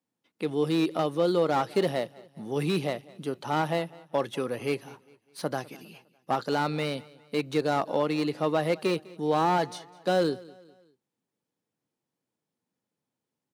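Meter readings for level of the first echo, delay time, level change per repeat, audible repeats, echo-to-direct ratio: −22.0 dB, 203 ms, −7.5 dB, 2, −21.0 dB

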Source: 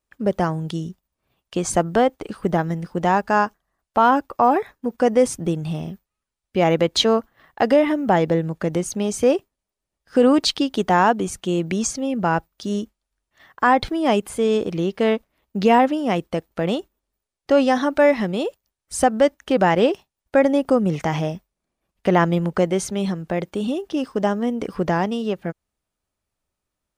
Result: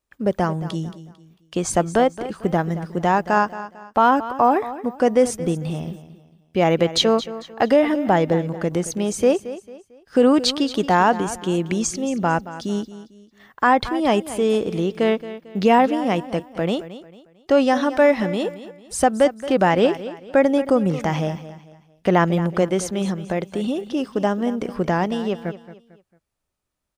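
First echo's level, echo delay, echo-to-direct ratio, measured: −14.5 dB, 224 ms, −14.0 dB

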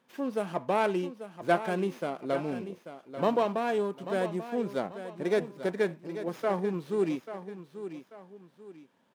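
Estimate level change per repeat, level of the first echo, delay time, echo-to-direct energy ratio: −9.0 dB, −11.5 dB, 839 ms, −11.0 dB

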